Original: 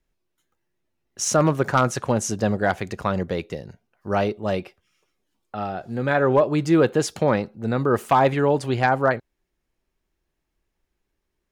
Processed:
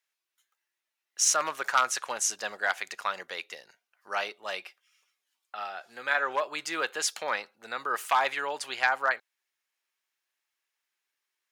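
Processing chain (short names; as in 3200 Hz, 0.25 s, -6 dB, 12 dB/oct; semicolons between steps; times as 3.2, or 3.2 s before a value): HPF 1400 Hz 12 dB/oct; gain +1.5 dB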